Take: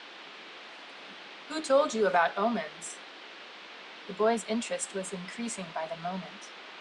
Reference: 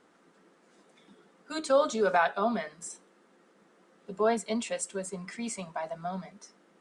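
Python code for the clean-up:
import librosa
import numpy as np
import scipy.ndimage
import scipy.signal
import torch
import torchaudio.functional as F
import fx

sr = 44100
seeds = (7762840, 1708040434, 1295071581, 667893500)

y = fx.noise_reduce(x, sr, print_start_s=3.04, print_end_s=3.54, reduce_db=16.0)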